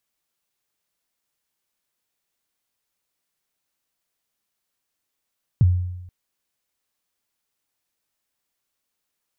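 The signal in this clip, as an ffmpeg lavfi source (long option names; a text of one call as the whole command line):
ffmpeg -f lavfi -i "aevalsrc='0.335*pow(10,-3*t/0.96)*sin(2*PI*(150*0.03/log(90/150)*(exp(log(90/150)*min(t,0.03)/0.03)-1)+90*max(t-0.03,0)))':duration=0.48:sample_rate=44100" out.wav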